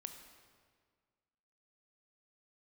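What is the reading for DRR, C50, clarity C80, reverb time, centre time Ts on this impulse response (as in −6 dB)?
6.0 dB, 7.0 dB, 8.5 dB, 1.8 s, 30 ms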